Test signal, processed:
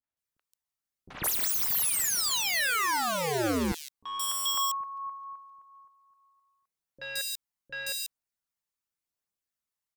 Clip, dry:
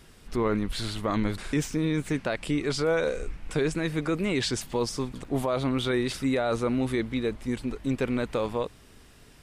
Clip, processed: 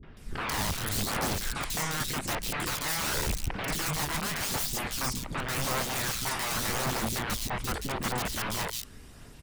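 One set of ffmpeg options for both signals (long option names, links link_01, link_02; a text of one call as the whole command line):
ffmpeg -i in.wav -filter_complex "[0:a]aeval=exprs='(mod(25.1*val(0)+1,2)-1)/25.1':channel_layout=same,aphaser=in_gain=1:out_gain=1:delay=1.1:decay=0.3:speed=0.87:type=triangular,acrossover=split=400|3100[link_01][link_02][link_03];[link_02]adelay=30[link_04];[link_03]adelay=170[link_05];[link_01][link_04][link_05]amix=inputs=3:normalize=0,volume=2.5dB" out.wav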